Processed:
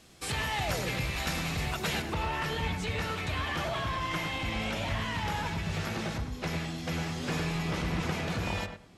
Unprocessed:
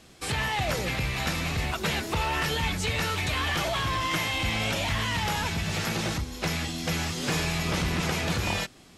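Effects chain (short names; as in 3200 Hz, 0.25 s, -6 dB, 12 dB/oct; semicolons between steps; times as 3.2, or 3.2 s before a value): high shelf 4000 Hz +3 dB, from 2.02 s -8 dB; darkening echo 0.104 s, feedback 22%, low-pass 1400 Hz, level -4.5 dB; gain -4.5 dB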